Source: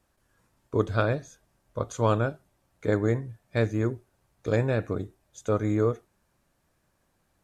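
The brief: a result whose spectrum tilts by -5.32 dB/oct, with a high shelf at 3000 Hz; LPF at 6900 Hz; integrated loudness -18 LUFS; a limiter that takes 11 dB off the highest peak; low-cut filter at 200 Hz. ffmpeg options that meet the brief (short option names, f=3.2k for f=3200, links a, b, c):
-af "highpass=200,lowpass=6.9k,highshelf=f=3k:g=8.5,volume=15.5dB,alimiter=limit=-4dB:level=0:latency=1"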